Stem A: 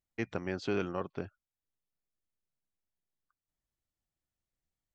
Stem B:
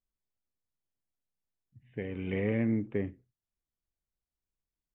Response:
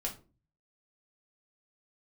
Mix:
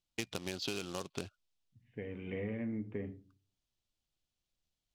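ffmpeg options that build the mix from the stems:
-filter_complex "[0:a]acrusher=bits=3:mode=log:mix=0:aa=0.000001,adynamicsmooth=sensitivity=4:basefreq=2.8k,aexciter=amount=7.6:drive=5:freq=2.7k,volume=1.5dB[a];[1:a]volume=-9.5dB,asplit=2[b][c];[c]volume=-4.5dB[d];[2:a]atrim=start_sample=2205[e];[d][e]afir=irnorm=-1:irlink=0[f];[a][b][f]amix=inputs=3:normalize=0,acompressor=threshold=-34dB:ratio=12"

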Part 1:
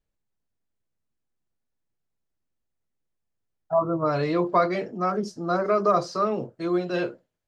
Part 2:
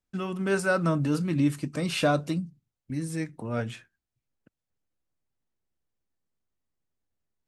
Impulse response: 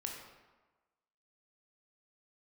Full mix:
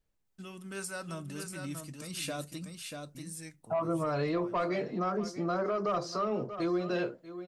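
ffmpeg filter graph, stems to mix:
-filter_complex "[0:a]asoftclip=type=tanh:threshold=-14dB,volume=1.5dB,asplit=3[a][b][c];[b]volume=-19dB[d];[1:a]aphaser=in_gain=1:out_gain=1:delay=1.7:decay=0.24:speed=0.43:type=triangular,crystalizer=i=4.5:c=0,adelay=250,volume=-16dB,asplit=2[e][f];[f]volume=-5.5dB[g];[c]apad=whole_len=340526[h];[e][h]sidechaincompress=threshold=-27dB:ratio=8:attack=16:release=390[i];[d][g]amix=inputs=2:normalize=0,aecho=0:1:638:1[j];[a][i][j]amix=inputs=3:normalize=0,alimiter=limit=-24dB:level=0:latency=1:release=244"

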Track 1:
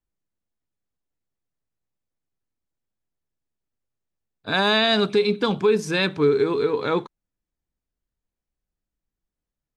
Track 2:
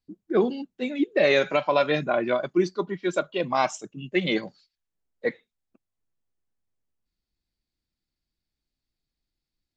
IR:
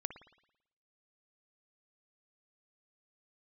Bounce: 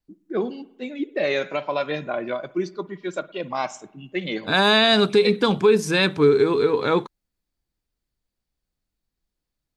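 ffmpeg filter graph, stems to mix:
-filter_complex "[0:a]adynamicequalizer=threshold=0.01:dfrequency=7900:dqfactor=0.7:tfrequency=7900:tqfactor=0.7:attack=5:release=100:ratio=0.375:range=3.5:mode=boostabove:tftype=highshelf,volume=2.5dB[a];[1:a]volume=-6.5dB,asplit=2[b][c];[c]volume=-5dB[d];[2:a]atrim=start_sample=2205[e];[d][e]afir=irnorm=-1:irlink=0[f];[a][b][f]amix=inputs=3:normalize=0"

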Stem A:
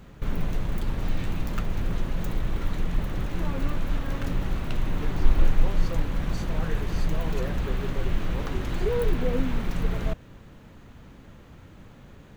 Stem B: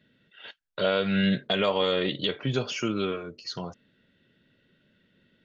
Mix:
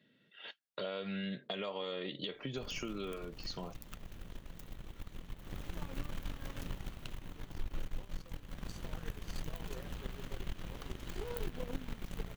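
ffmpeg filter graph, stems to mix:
-filter_complex "[0:a]highshelf=f=4k:g=10,aeval=exprs='0.562*(cos(1*acos(clip(val(0)/0.562,-1,1)))-cos(1*PI/2))+0.0631*(cos(7*acos(clip(val(0)/0.562,-1,1)))-cos(7*PI/2))':c=same,equalizer=f=3.1k:t=o:w=0.24:g=4,adelay=2350,volume=5.5dB,afade=t=in:st=5.38:d=0.24:silence=0.266073,afade=t=out:st=6.66:d=0.54:silence=0.298538,afade=t=in:st=8.47:d=0.24:silence=0.398107[a];[1:a]highpass=140,bandreject=f=1.5k:w=12,acompressor=threshold=-33dB:ratio=2,volume=-4dB[b];[a][b]amix=inputs=2:normalize=0,acompressor=threshold=-39dB:ratio=2"

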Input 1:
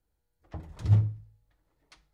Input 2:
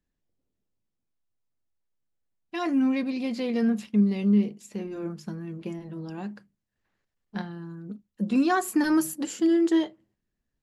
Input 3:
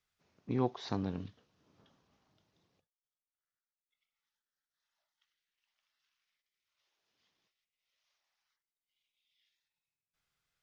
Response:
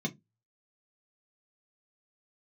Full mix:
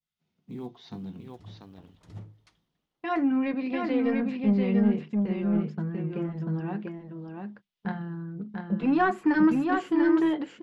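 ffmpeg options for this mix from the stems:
-filter_complex "[0:a]lowshelf=f=140:t=q:w=1.5:g=-8,adelay=550,volume=-6.5dB,asplit=2[a][b];[b]volume=-5.5dB[c];[1:a]asoftclip=type=tanh:threshold=-17dB,lowpass=2k,agate=range=-23dB:threshold=-44dB:ratio=16:detection=peak,adelay=500,volume=2dB,asplit=3[d][e][f];[e]volume=-16dB[g];[f]volume=-5dB[h];[2:a]equalizer=f=3.2k:w=2:g=8,acrusher=bits=8:mode=log:mix=0:aa=0.000001,volume=-10dB,asplit=4[i][j][k][l];[j]volume=-7dB[m];[k]volume=-4dB[n];[l]apad=whole_len=118312[o];[a][o]sidechaincompress=threshold=-58dB:ratio=5:attack=33:release=768[p];[3:a]atrim=start_sample=2205[q];[g][m]amix=inputs=2:normalize=0[r];[r][q]afir=irnorm=-1:irlink=0[s];[c][h][n]amix=inputs=3:normalize=0,aecho=0:1:692:1[t];[p][d][i][s][t]amix=inputs=5:normalize=0,adynamicequalizer=threshold=0.00447:dfrequency=2300:dqfactor=0.7:tfrequency=2300:tqfactor=0.7:attack=5:release=100:ratio=0.375:range=2:mode=boostabove:tftype=bell"

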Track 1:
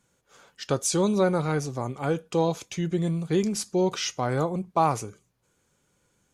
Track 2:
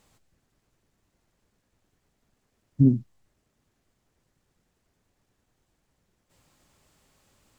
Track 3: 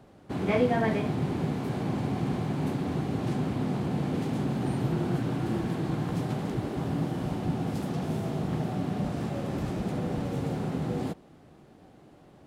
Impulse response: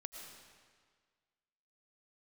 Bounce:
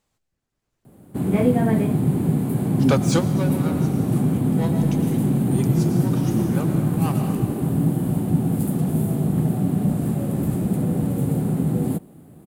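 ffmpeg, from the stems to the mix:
-filter_complex "[0:a]highpass=450,asoftclip=type=tanh:threshold=-26.5dB,aeval=exprs='val(0)*pow(10,-20*(0.5-0.5*cos(2*PI*4.1*n/s))/20)':c=same,adelay=2200,volume=1.5dB,asplit=2[a][b];[b]volume=-4dB[c];[1:a]volume=-10dB,asplit=2[d][e];[2:a]equalizer=f=170:w=0.44:g=13.5,aexciter=amount=14:drive=2.4:freq=8.1k,adelay=850,volume=-12dB[f];[e]apad=whole_len=376426[g];[a][g]sidechaingate=range=-33dB:threshold=-60dB:ratio=16:detection=peak[h];[3:a]atrim=start_sample=2205[i];[c][i]afir=irnorm=-1:irlink=0[j];[h][d][f][j]amix=inputs=4:normalize=0,dynaudnorm=f=500:g=3:m=9.5dB"

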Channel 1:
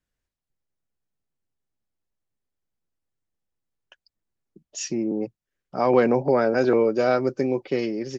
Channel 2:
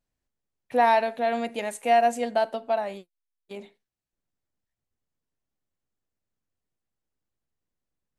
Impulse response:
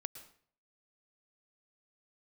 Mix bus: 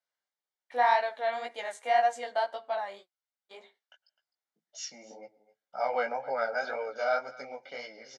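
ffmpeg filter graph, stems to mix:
-filter_complex "[0:a]aecho=1:1:1.4:0.95,volume=-6dB,asplit=3[a][b][c];[b]volume=-9.5dB[d];[c]volume=-17.5dB[e];[1:a]volume=1.5dB[f];[2:a]atrim=start_sample=2205[g];[d][g]afir=irnorm=-1:irlink=0[h];[e]aecho=0:1:257:1[i];[a][f][h][i]amix=inputs=4:normalize=0,bandreject=f=2.6k:w=5.1,flanger=delay=15:depth=5.8:speed=1.9,highpass=750,lowpass=5.7k"

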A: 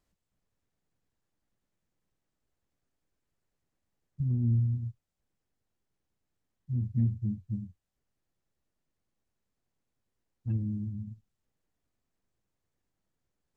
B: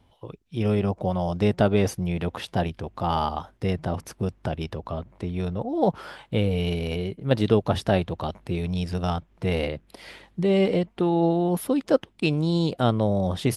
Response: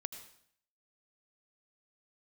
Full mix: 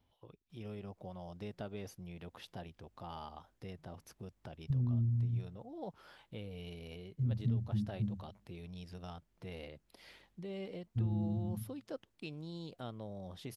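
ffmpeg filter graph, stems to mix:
-filter_complex "[0:a]adelay=500,volume=-1.5dB,asplit=2[a][b];[b]volume=-7.5dB[c];[1:a]equalizer=f=8.8k:w=1.5:g=-9.5,acompressor=threshold=-39dB:ratio=1.5,highshelf=f=4.7k:g=10.5,volume=-15.5dB[d];[2:a]atrim=start_sample=2205[e];[c][e]afir=irnorm=-1:irlink=0[f];[a][d][f]amix=inputs=3:normalize=0,acompressor=threshold=-30dB:ratio=5"

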